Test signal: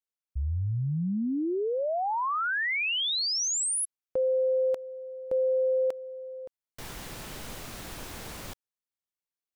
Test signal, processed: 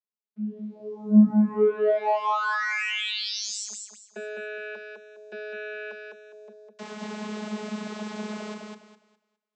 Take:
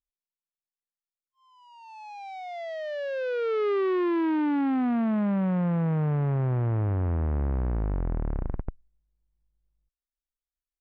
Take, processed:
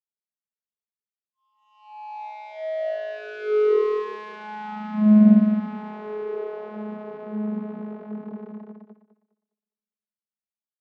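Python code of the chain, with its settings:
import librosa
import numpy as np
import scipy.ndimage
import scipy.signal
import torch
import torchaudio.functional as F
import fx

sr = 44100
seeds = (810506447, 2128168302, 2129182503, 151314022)

y = fx.leveller(x, sr, passes=2)
y = fx.echo_thinned(y, sr, ms=205, feedback_pct=27, hz=170.0, wet_db=-3.0)
y = fx.vocoder(y, sr, bands=32, carrier='saw', carrier_hz=212.0)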